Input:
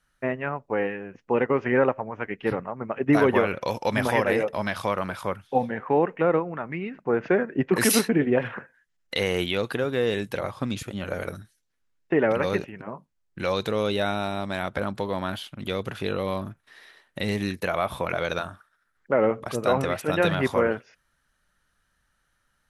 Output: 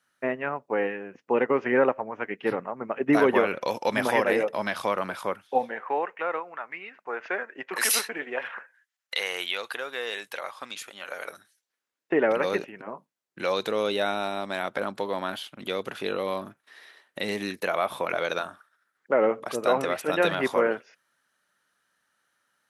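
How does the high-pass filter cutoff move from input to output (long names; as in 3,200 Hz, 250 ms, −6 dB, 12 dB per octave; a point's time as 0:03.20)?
0:05.23 230 Hz
0:06.12 870 Hz
0:11.10 870 Hz
0:12.13 280 Hz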